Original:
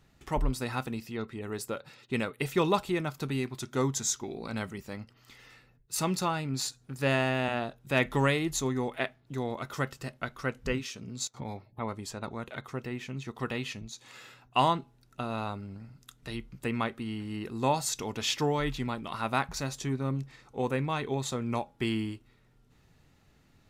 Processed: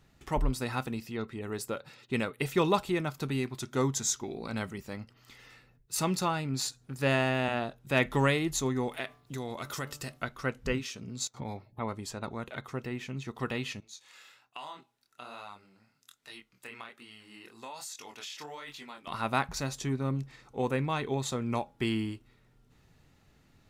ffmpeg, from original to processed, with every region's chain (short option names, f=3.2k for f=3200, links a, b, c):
-filter_complex "[0:a]asettb=1/sr,asplit=3[a][b][c];[a]atrim=end=8.884[d];[b]atrim=start=8.88:end=10.23,asetpts=PTS-STARTPTS,afade=t=in:d=0.004:c=qsin,afade=t=out:st=1.346:d=0.004:c=qsin,highshelf=f=3.2k:g=10,bandreject=f=146.2:t=h:w=4,bandreject=f=292.4:t=h:w=4,bandreject=f=438.6:t=h:w=4,bandreject=f=584.8:t=h:w=4,bandreject=f=731:t=h:w=4,bandreject=f=877.2:t=h:w=4,bandreject=f=1.0234k:t=h:w=4,bandreject=f=1.1696k:t=h:w=4,bandreject=f=1.3158k:t=h:w=4,acompressor=threshold=-34dB:ratio=2.5:attack=3.2:release=140:knee=1:detection=peak[e];[c]atrim=start=10.226[f];[d][e]acrossfade=d=0.004:c1=hsin:c2=qsin[g];[g][f]acrossfade=d=0.004:c1=qsin:c2=hsin,asettb=1/sr,asplit=3[h][i][j];[h]atrim=end=13.804[k];[i]atrim=start=13.8:end=19.07,asetpts=PTS-STARTPTS,afade=t=in:d=0.004:c=qsin,afade=t=out:st=5.266:d=0.004:c=qsin,highpass=f=1.4k:p=1,flanger=delay=20:depth=7.7:speed=1.2,acompressor=threshold=-38dB:ratio=10:attack=3.2:release=140:knee=1:detection=peak[l];[j]atrim=start=19.066[m];[k][l]acrossfade=d=0.004:c1=hsin:c2=qsin[n];[n][m]acrossfade=d=0.004:c1=qsin:c2=hsin"